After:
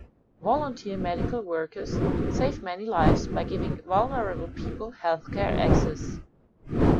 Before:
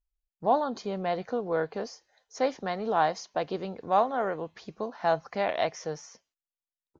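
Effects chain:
wind on the microphone 340 Hz −28 dBFS
noise reduction from a noise print of the clip's start 15 dB

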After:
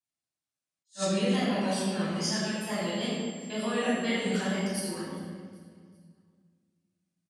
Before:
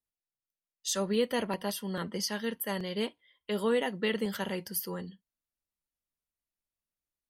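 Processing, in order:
loose part that buzzes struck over −36 dBFS, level −36 dBFS
mains-hum notches 60/120/180/240/300/360/420/480/540 Hz
notch comb filter 470 Hz
tape wow and flutter 110 cents
Butterworth low-pass 9,800 Hz 48 dB per octave
high-shelf EQ 7,200 Hz +9.5 dB
repeating echo 392 ms, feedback 43%, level −22 dB
convolution reverb RT60 1.6 s, pre-delay 12 ms, DRR −9 dB
0:02.23–0:04.66: steady tone 7,500 Hz −40 dBFS
high-pass filter 93 Hz
level that may rise only so fast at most 330 dB per second
level −8 dB

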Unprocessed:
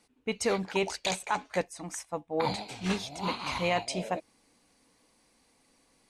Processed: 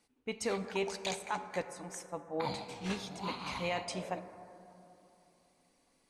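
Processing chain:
dense smooth reverb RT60 3.1 s, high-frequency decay 0.25×, DRR 9.5 dB
level −6.5 dB

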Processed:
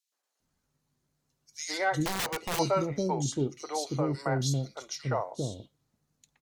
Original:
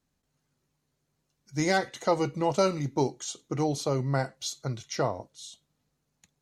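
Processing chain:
three-band delay without the direct sound highs, mids, lows 120/400 ms, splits 450/2,600 Hz
0:02.05–0:02.59: wrap-around overflow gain 26 dB

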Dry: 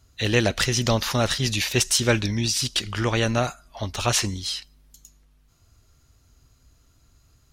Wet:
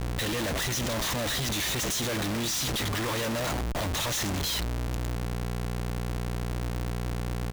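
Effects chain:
mu-law and A-law mismatch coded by A
EQ curve with evenly spaced ripples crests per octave 1.1, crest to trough 7 dB
echo with shifted repeats 95 ms, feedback 57%, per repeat +73 Hz, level −21.5 dB
brickwall limiter −13.5 dBFS, peak gain reduction 8.5 dB
low-shelf EQ 130 Hz −2 dB
mains hum 60 Hz, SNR 13 dB
0:01.83–0:04.10: high-pass filter 92 Hz 6 dB per octave
comparator with hysteresis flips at −41.5 dBFS

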